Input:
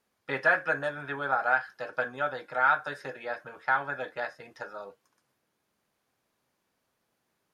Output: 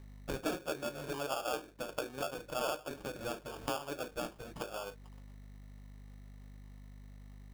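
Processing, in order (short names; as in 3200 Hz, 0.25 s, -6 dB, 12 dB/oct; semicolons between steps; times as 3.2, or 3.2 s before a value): hum 50 Hz, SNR 26 dB; sample-rate reducer 2000 Hz, jitter 0%; compressor 3:1, threshold -47 dBFS, peak gain reduction 21 dB; gain +7 dB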